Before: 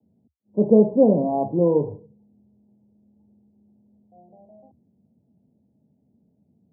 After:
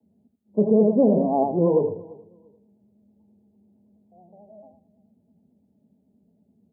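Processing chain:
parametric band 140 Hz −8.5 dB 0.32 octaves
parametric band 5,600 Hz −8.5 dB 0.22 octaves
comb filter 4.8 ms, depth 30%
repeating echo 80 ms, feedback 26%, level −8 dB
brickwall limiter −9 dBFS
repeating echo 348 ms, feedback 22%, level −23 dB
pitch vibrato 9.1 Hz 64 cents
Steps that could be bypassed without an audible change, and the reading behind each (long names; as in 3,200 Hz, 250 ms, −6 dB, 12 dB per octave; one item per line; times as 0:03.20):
parametric band 5,600 Hz: nothing at its input above 1,000 Hz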